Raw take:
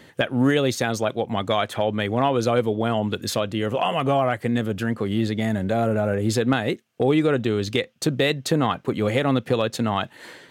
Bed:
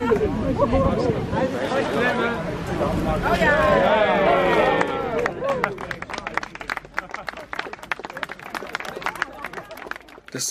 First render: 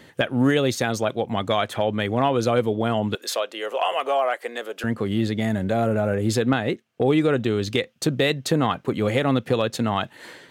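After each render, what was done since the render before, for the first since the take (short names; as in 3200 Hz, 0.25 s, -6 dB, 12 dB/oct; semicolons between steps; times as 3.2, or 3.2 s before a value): 3.15–4.84 HPF 440 Hz 24 dB/oct; 6.49–7.06 high shelf 6100 Hz -9 dB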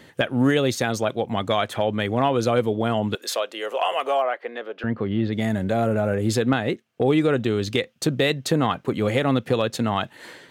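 4.22–5.33 air absorption 270 m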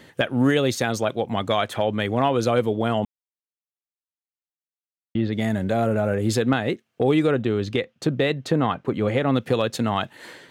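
3.05–5.15 mute; 7.31–9.34 LPF 2400 Hz 6 dB/oct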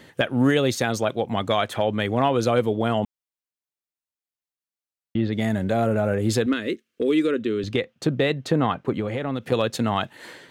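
6.46–7.64 fixed phaser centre 320 Hz, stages 4; 9–9.52 compressor 2.5:1, threshold -25 dBFS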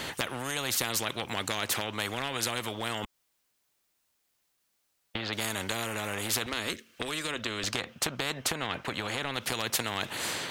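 compressor, threshold -22 dBFS, peak gain reduction 8 dB; spectral compressor 4:1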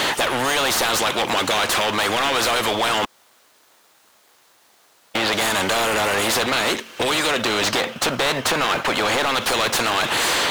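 in parallel at -4.5 dB: sample-and-hold 16×; on the sum: overdrive pedal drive 28 dB, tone 5700 Hz, clips at -11 dBFS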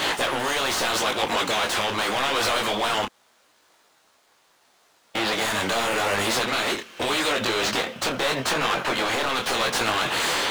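median filter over 3 samples; detuned doubles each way 28 cents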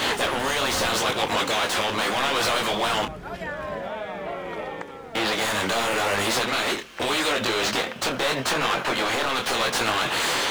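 add bed -14.5 dB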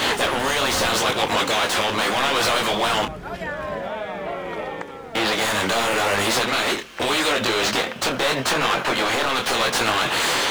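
gain +3 dB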